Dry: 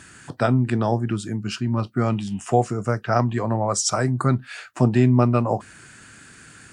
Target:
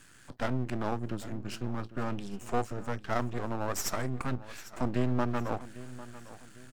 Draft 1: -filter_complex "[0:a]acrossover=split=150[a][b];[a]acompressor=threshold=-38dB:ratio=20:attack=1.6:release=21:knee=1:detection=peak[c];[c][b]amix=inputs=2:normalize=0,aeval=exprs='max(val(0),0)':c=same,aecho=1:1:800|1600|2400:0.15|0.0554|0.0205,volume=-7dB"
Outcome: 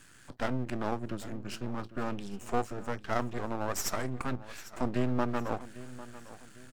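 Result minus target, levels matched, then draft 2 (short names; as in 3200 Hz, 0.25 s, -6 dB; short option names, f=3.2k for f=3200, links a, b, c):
compressor: peak gain reduction +8.5 dB
-filter_complex "[0:a]acrossover=split=150[a][b];[a]acompressor=threshold=-29dB:ratio=20:attack=1.6:release=21:knee=1:detection=peak[c];[c][b]amix=inputs=2:normalize=0,aeval=exprs='max(val(0),0)':c=same,aecho=1:1:800|1600|2400:0.15|0.0554|0.0205,volume=-7dB"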